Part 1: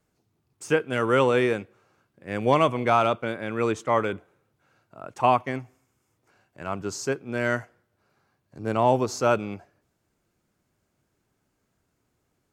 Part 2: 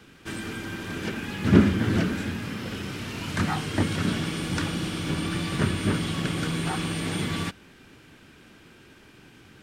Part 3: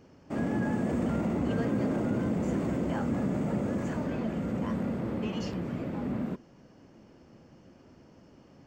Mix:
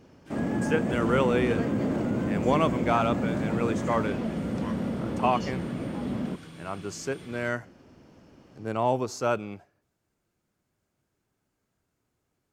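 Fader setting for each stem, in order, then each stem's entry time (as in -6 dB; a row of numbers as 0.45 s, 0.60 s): -4.5 dB, -18.5 dB, +1.5 dB; 0.00 s, 0.00 s, 0.00 s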